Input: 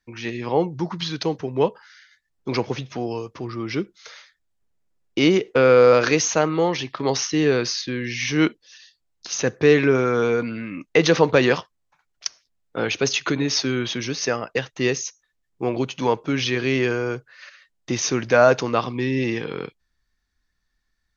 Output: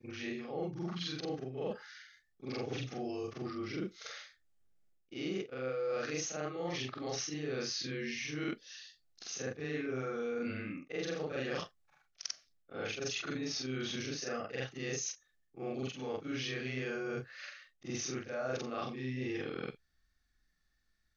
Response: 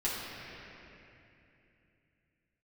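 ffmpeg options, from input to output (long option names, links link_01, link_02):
-af "afftfilt=real='re':imag='-im':win_size=4096:overlap=0.75,areverse,acompressor=threshold=-37dB:ratio=6,areverse,asuperstop=centerf=970:order=4:qfactor=5,volume=1dB"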